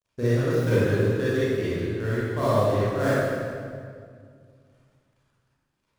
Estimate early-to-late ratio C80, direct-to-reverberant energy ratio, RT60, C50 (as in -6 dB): -2.0 dB, -10.5 dB, 2.1 s, -6.0 dB